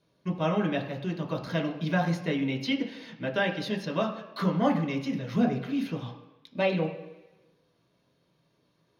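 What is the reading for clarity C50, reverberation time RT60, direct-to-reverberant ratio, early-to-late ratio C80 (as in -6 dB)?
9.0 dB, 1.1 s, 0.0 dB, 11.0 dB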